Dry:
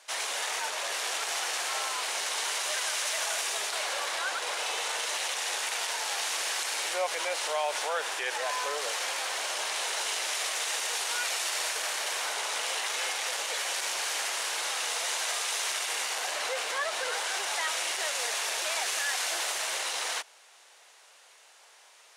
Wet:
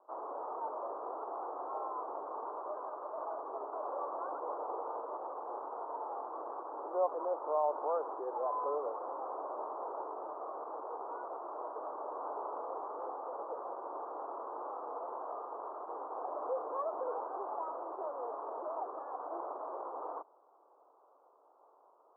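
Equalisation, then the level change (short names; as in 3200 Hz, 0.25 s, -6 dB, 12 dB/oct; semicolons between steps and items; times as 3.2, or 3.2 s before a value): ladder high-pass 260 Hz, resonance 50%; steep low-pass 1200 Hz 72 dB/oct; +7.0 dB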